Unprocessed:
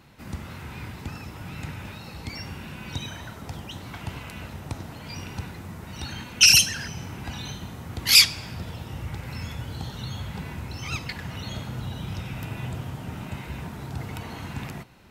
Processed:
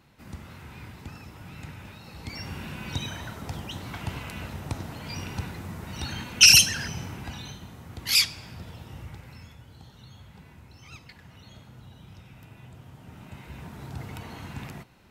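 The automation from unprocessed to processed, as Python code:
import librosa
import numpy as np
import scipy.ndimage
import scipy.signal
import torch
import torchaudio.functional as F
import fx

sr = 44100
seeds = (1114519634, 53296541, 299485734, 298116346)

y = fx.gain(x, sr, db=fx.line((2.01, -6.0), (2.58, 1.0), (6.95, 1.0), (7.61, -6.5), (9.0, -6.5), (9.6, -15.0), (12.71, -15.0), (13.85, -4.0)))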